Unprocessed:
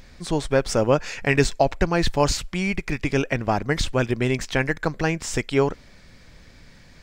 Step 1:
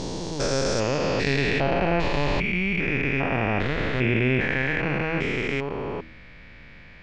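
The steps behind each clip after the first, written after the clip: stepped spectrum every 0.4 s; de-hum 79.94 Hz, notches 4; low-pass sweep 5900 Hz -> 2500 Hz, 0.86–1.99; gain +3 dB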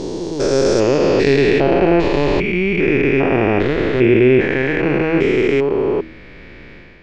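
bell 370 Hz +13 dB 0.86 oct; AGC gain up to 7 dB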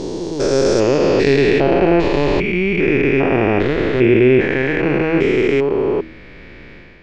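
nothing audible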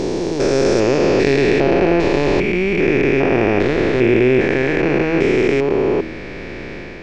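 per-bin compression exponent 0.6; gain -3.5 dB

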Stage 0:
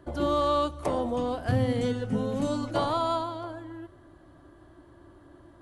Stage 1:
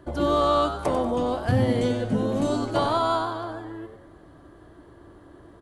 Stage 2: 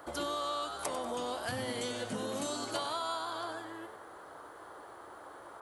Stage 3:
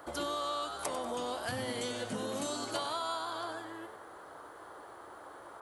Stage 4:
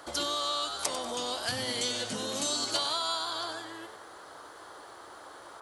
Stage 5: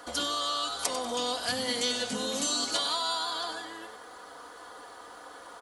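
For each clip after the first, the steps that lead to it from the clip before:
frequency-shifting echo 95 ms, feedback 38%, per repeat +110 Hz, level -10 dB; gain +3.5 dB
tilt +4 dB/oct; compressor 6:1, threshold -29 dBFS, peak gain reduction 11 dB; band noise 380–1400 Hz -47 dBFS; gain -4 dB
nothing audible
bell 5100 Hz +13 dB 1.9 oct
comb 4.1 ms, depth 61%

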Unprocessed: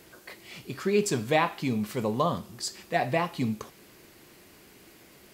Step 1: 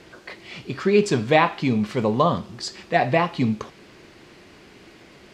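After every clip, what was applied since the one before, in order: LPF 4700 Hz 12 dB/oct; gain +7 dB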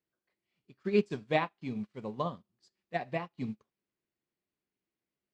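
bell 190 Hz +3.5 dB 1 oct; upward expander 2.5:1, over -36 dBFS; gain -9 dB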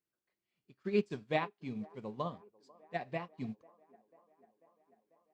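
band-limited delay 0.493 s, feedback 70%, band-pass 620 Hz, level -23 dB; gain -4 dB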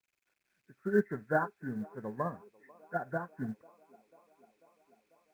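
nonlinear frequency compression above 1300 Hz 4:1; companded quantiser 8-bit; gain +3 dB

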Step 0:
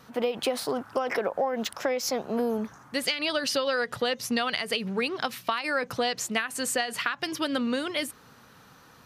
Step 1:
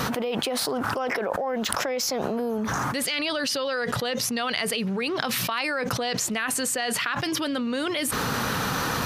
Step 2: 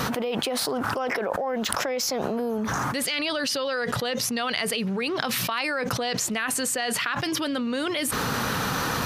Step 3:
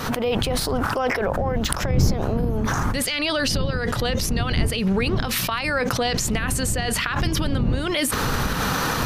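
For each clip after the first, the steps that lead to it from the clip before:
fast leveller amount 100%; gain -4 dB
nothing audible
wind noise 130 Hz -24 dBFS; recorder AGC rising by 67 dB/s; gain -4 dB

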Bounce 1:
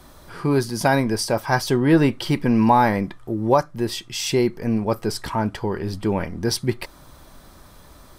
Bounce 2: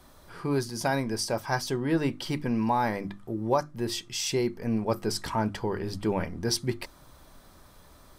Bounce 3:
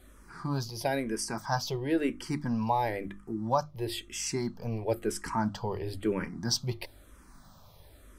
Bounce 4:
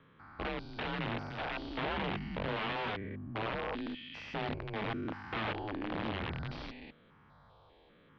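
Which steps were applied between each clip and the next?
notches 50/100/150/200/250/300/350 Hz; dynamic EQ 6300 Hz, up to +4 dB, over -43 dBFS, Q 1.3; vocal rider within 3 dB 0.5 s; gain -7.5 dB
hum 50 Hz, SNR 26 dB; endless phaser -1 Hz
stepped spectrum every 0.2 s; wrapped overs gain 29 dB; mistuned SSB -100 Hz 160–3600 Hz

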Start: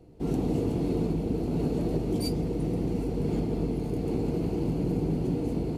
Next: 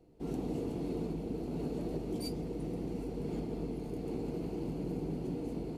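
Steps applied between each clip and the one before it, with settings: bell 90 Hz -7 dB 1.4 oct; gain -7.5 dB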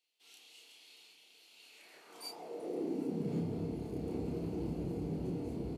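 high-pass sweep 3100 Hz -> 64 Hz, 1.63–3.77; doubler 30 ms -2.5 dB; gain -3.5 dB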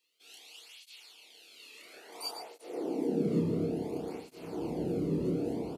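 echo 0.113 s -9.5 dB; tape flanging out of phase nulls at 0.58 Hz, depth 1.4 ms; gain +8.5 dB

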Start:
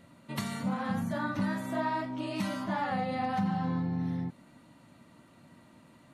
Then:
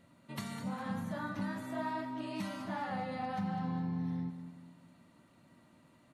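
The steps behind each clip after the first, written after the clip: feedback echo 0.202 s, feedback 45%, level -11 dB; gain -6.5 dB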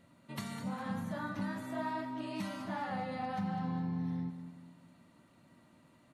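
nothing audible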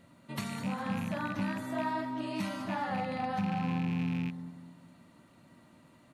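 rattling part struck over -40 dBFS, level -37 dBFS; gain +4 dB

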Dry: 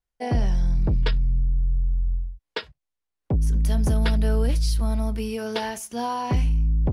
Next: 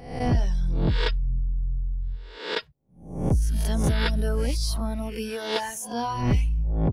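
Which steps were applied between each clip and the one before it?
spectral swells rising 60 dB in 0.65 s; reverb removal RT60 1.1 s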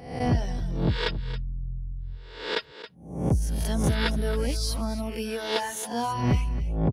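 HPF 61 Hz; echo 0.273 s -14 dB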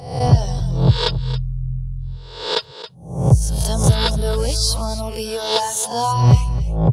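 ten-band EQ 125 Hz +12 dB, 250 Hz -10 dB, 500 Hz +4 dB, 1000 Hz +6 dB, 2000 Hz -10 dB, 4000 Hz +7 dB, 8000 Hz +9 dB; gain +5 dB

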